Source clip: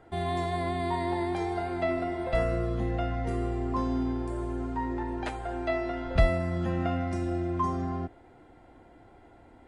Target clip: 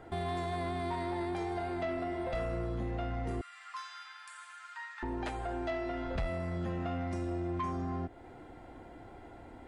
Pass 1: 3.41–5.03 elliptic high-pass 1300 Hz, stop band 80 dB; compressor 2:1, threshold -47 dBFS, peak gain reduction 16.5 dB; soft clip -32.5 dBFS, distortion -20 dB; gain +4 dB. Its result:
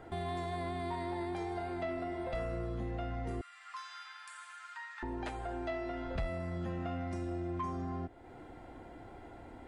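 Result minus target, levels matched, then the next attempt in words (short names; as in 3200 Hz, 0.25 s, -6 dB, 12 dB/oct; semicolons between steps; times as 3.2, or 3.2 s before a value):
compressor: peak gain reduction +3 dB
3.41–5.03 elliptic high-pass 1300 Hz, stop band 80 dB; compressor 2:1, threshold -40.5 dBFS, peak gain reduction 13 dB; soft clip -32.5 dBFS, distortion -15 dB; gain +4 dB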